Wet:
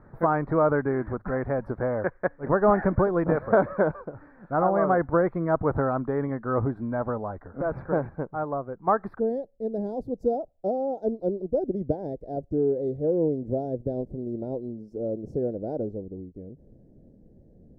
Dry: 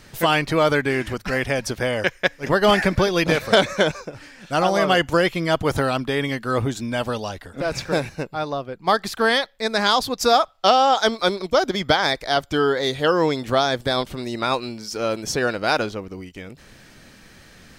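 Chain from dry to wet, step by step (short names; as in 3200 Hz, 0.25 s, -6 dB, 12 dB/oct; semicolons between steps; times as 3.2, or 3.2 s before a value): inverse Chebyshev low-pass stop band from 2700 Hz, stop band 40 dB, from 9.18 s stop band from 1100 Hz; gain -3 dB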